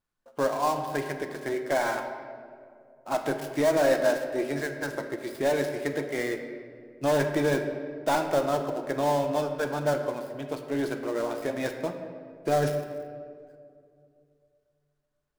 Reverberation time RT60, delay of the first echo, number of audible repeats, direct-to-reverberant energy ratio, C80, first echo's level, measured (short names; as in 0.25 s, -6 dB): 2.4 s, none, none, 5.0 dB, 8.5 dB, none